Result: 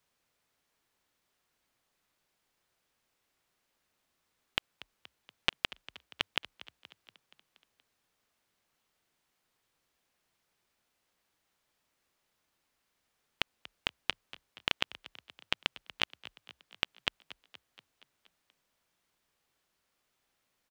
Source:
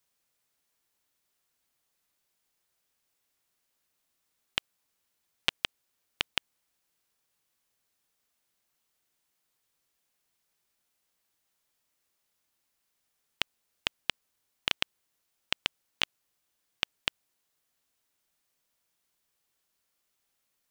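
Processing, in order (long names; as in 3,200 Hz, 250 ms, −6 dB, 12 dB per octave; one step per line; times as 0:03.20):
high-shelf EQ 5,300 Hz −11.5 dB
brickwall limiter −11.5 dBFS, peak gain reduction 4.5 dB
echo with shifted repeats 237 ms, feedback 61%, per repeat +31 Hz, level −18 dB
level +5 dB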